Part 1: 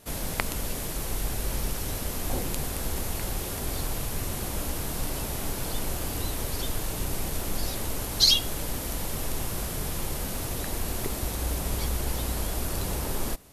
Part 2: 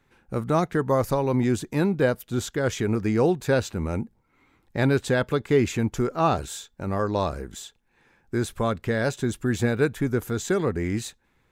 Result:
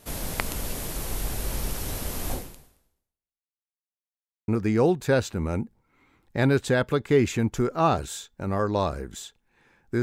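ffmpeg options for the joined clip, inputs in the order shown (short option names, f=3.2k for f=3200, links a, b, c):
-filter_complex "[0:a]apad=whole_dur=10.02,atrim=end=10.02,asplit=2[a][b];[a]atrim=end=3.64,asetpts=PTS-STARTPTS,afade=t=out:st=2.32:d=1.32:c=exp[c];[b]atrim=start=3.64:end=4.48,asetpts=PTS-STARTPTS,volume=0[d];[1:a]atrim=start=2.88:end=8.42,asetpts=PTS-STARTPTS,afade=t=in:d=0.004:c=hsin[e];[c][d][e]concat=n=3:v=0:a=1"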